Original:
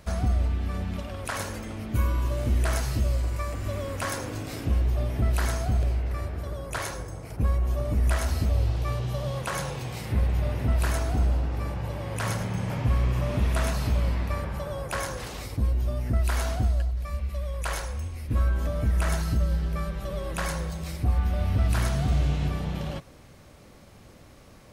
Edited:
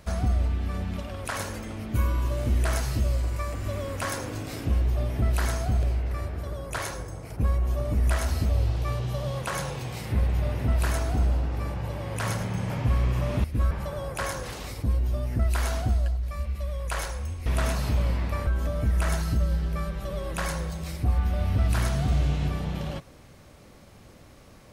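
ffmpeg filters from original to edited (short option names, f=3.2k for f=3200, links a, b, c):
-filter_complex "[0:a]asplit=5[a][b][c][d][e];[a]atrim=end=13.442[f];[b]atrim=start=18.198:end=18.472[g];[c]atrim=start=14.448:end=18.202[h];[d]atrim=start=13.438:end=14.452[i];[e]atrim=start=18.468[j];[f][g]acrossfade=d=0.004:c1=hsin:c2=hsin[k];[k][h]acrossfade=d=0.004:c1=hsin:c2=hsin[l];[l][i]acrossfade=d=0.004:c1=hsin:c2=hsin[m];[m][j]acrossfade=d=0.004:c1=hsin:c2=hsin"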